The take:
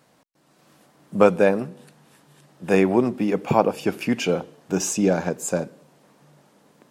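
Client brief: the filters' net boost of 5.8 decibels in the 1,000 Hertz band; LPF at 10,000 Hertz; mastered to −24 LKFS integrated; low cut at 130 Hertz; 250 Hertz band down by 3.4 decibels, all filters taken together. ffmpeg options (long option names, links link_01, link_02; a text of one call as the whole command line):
ffmpeg -i in.wav -af "highpass=130,lowpass=10000,equalizer=frequency=250:width_type=o:gain=-4.5,equalizer=frequency=1000:width_type=o:gain=8,volume=-2.5dB" out.wav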